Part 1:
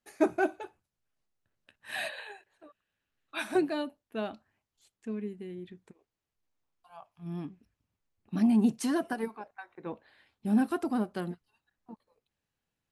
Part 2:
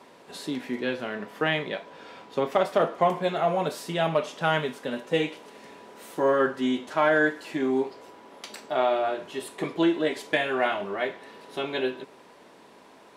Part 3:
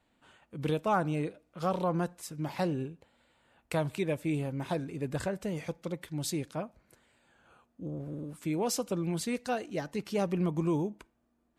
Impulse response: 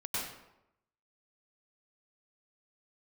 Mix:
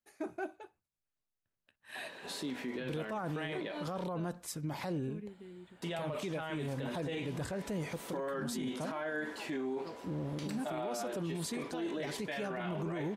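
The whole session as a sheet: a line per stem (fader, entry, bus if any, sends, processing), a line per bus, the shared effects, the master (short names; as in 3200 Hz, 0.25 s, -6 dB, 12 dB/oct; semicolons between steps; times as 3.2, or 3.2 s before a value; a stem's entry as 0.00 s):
-9.0 dB, 0.00 s, no send, dry
-2.0 dB, 1.95 s, muted 4.04–5.82, no send, dry
+2.0 dB, 2.25 s, no send, notch 2700 Hz, Q 16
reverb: off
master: limiter -30 dBFS, peak gain reduction 18.5 dB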